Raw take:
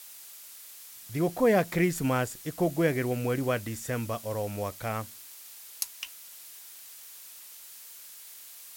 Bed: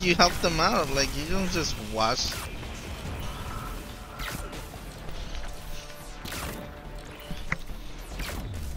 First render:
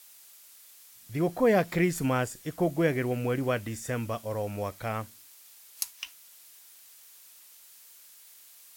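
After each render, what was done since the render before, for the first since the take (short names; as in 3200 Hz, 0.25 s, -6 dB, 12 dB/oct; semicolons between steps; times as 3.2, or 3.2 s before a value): noise print and reduce 6 dB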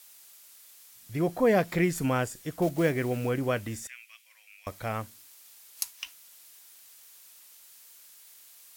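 2.62–3.3 block floating point 5-bit; 3.87–4.67 ladder high-pass 2100 Hz, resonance 65%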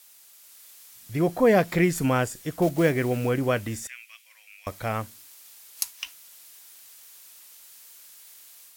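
AGC gain up to 4 dB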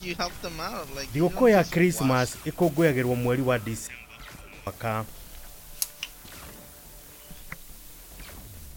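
add bed -10 dB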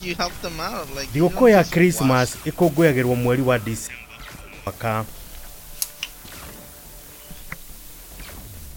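gain +5.5 dB; limiter -3 dBFS, peak gain reduction 2.5 dB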